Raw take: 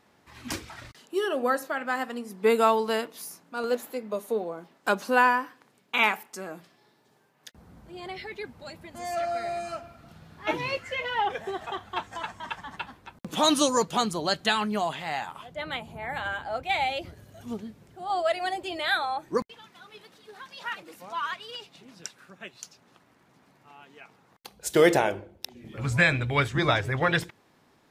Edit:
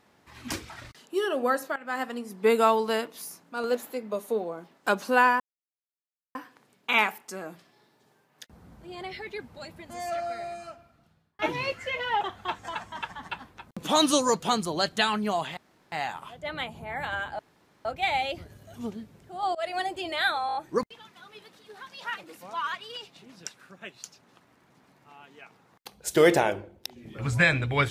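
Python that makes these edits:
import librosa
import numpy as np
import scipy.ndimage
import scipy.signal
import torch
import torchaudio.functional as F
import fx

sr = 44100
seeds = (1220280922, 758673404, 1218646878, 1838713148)

y = fx.edit(x, sr, fx.fade_in_from(start_s=1.76, length_s=0.25, floor_db=-17.0),
    fx.insert_silence(at_s=5.4, length_s=0.95),
    fx.fade_out_span(start_s=8.86, length_s=1.58),
    fx.cut(start_s=11.26, length_s=0.43),
    fx.insert_room_tone(at_s=15.05, length_s=0.35),
    fx.insert_room_tone(at_s=16.52, length_s=0.46),
    fx.fade_in_from(start_s=18.22, length_s=0.25, curve='qsin', floor_db=-22.0),
    fx.stutter(start_s=19.14, slice_s=0.02, count=5), tone=tone)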